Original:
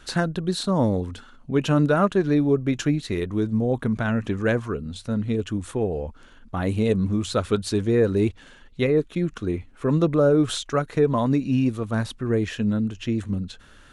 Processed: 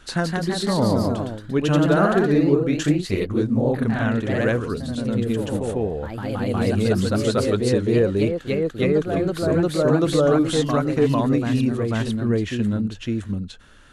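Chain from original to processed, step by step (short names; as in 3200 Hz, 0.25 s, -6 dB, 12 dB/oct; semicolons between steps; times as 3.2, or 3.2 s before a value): echoes that change speed 0.176 s, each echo +1 st, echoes 3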